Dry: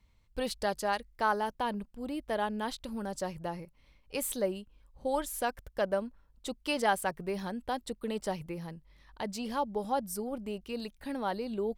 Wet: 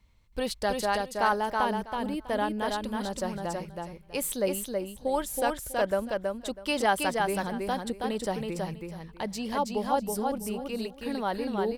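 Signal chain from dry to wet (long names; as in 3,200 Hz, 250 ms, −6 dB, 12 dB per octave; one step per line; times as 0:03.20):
repeating echo 324 ms, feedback 19%, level −3.5 dB
level +3 dB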